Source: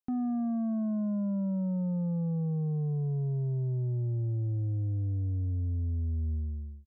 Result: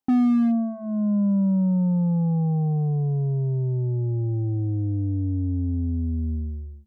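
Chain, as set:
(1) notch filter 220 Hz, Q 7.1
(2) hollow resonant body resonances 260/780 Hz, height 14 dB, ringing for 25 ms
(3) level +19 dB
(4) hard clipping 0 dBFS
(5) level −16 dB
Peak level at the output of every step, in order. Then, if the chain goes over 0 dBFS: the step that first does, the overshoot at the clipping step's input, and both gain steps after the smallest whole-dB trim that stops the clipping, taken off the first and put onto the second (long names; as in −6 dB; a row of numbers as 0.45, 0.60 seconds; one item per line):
−27.0, −13.5, +5.5, 0.0, −16.0 dBFS
step 3, 5.5 dB
step 3 +13 dB, step 5 −10 dB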